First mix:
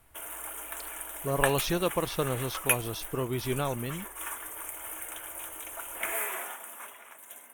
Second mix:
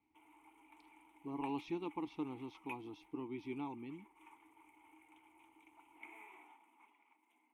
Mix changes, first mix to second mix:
background -6.5 dB; master: add vowel filter u

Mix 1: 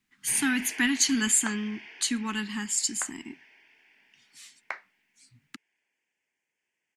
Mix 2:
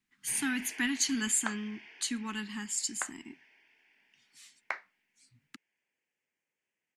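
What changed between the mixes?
speech -6.0 dB; first sound -6.0 dB

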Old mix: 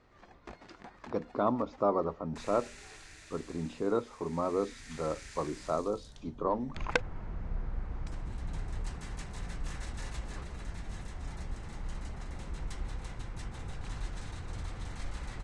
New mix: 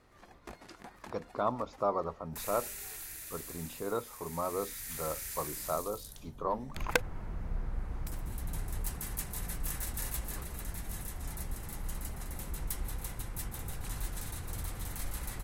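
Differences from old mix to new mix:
speech: add bell 280 Hz -9 dB 1.4 oct; master: remove Bessel low-pass 4900 Hz, order 8

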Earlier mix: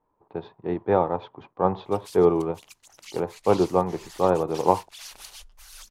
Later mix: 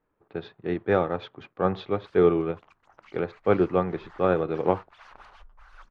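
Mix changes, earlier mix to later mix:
speech: remove synth low-pass 970 Hz, resonance Q 6; master: add synth low-pass 1300 Hz, resonance Q 1.9

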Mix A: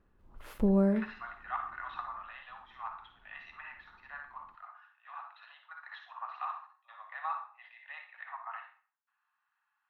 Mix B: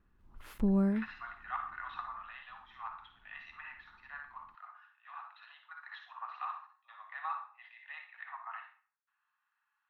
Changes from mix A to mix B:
background: send off; master: add bell 540 Hz -8.5 dB 1.1 oct

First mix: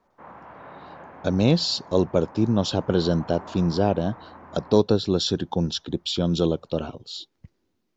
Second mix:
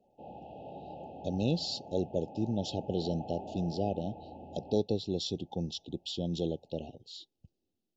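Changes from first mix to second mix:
speech -11.0 dB; master: add brick-wall FIR band-stop 880–2500 Hz

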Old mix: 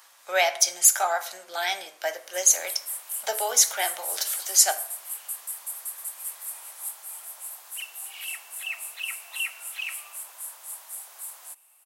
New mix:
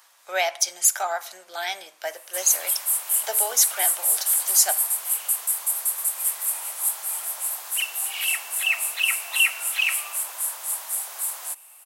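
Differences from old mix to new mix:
speech: send -10.0 dB; background +10.5 dB

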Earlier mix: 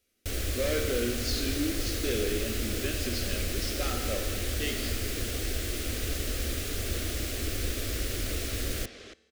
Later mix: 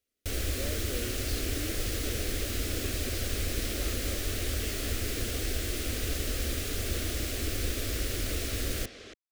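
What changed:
speech -7.5 dB; reverb: off

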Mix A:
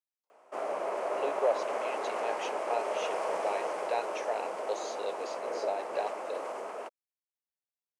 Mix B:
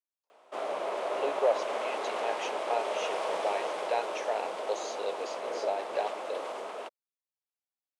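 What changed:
background: add bell 3600 Hz +12 dB 0.63 oct; reverb: on, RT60 0.55 s

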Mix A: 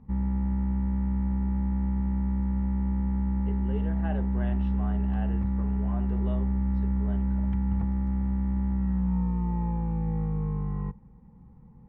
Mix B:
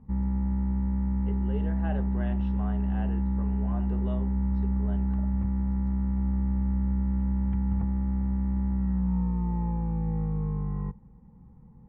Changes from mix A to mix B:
speech: entry -2.20 s; background: add air absorption 330 m

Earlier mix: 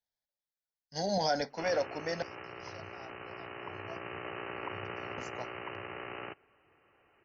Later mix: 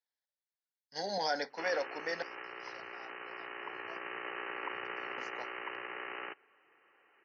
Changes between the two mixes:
background: remove air absorption 150 m; master: add speaker cabinet 380–5300 Hz, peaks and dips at 640 Hz -7 dB, 1800 Hz +4 dB, 2700 Hz -3 dB

